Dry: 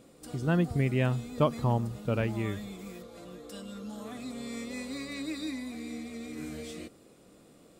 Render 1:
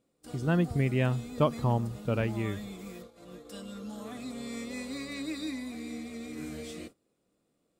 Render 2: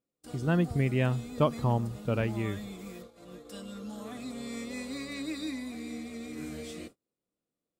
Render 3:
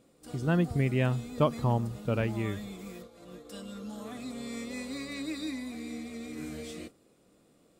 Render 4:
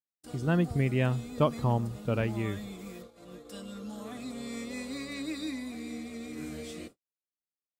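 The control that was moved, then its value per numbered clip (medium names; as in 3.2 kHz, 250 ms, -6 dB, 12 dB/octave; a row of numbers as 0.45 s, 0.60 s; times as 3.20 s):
gate, range: -19 dB, -33 dB, -7 dB, -57 dB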